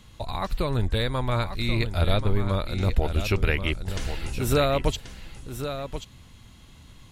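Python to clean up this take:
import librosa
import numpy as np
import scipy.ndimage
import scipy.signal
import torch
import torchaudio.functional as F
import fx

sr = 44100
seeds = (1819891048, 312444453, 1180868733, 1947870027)

y = fx.fix_echo_inverse(x, sr, delay_ms=1083, level_db=-9.5)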